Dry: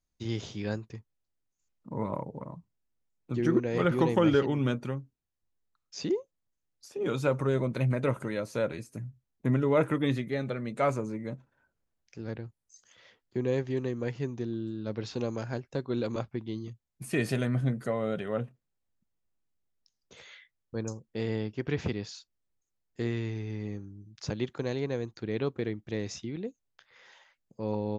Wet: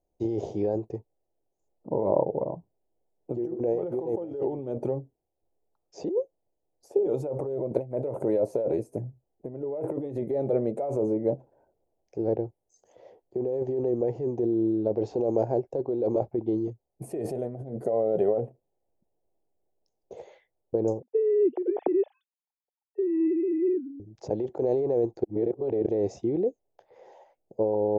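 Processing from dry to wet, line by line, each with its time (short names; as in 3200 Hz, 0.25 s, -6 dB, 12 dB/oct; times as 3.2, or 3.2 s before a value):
21.02–24 sine-wave speech
25.24–25.86 reverse
whole clip: EQ curve 750 Hz 0 dB, 1400 Hz -15 dB, 2300 Hz -14 dB, 3600 Hz -18 dB, 9300 Hz -7 dB; negative-ratio compressor -35 dBFS, ratio -1; band shelf 540 Hz +13.5 dB; gain -1.5 dB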